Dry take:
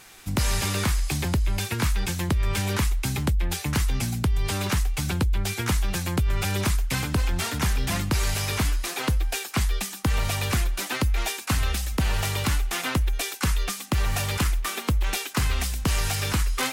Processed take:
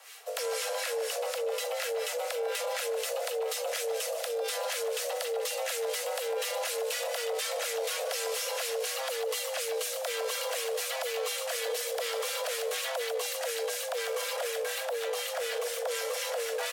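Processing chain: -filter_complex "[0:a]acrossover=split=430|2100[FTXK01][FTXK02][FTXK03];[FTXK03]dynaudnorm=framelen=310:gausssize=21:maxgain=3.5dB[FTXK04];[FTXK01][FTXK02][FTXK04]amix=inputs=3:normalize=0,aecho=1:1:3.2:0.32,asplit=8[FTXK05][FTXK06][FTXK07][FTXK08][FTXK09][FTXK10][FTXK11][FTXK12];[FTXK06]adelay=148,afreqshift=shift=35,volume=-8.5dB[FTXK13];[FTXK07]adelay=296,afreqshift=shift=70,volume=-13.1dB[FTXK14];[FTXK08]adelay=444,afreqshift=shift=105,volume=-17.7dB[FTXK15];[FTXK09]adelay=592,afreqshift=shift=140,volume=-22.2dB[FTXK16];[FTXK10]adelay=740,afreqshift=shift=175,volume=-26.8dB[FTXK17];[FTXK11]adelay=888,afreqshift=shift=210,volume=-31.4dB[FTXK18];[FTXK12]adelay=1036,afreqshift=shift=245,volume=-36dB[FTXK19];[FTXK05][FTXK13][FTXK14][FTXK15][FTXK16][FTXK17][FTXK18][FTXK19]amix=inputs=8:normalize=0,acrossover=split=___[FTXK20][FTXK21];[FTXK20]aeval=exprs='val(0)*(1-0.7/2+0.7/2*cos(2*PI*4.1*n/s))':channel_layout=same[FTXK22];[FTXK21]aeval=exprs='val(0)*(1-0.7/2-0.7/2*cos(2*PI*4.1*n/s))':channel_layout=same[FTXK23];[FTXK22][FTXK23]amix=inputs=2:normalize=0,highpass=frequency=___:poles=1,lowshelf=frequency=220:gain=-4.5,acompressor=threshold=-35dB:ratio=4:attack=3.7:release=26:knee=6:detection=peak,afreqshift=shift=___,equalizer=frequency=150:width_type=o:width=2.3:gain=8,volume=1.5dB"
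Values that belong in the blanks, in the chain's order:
750, 47, 410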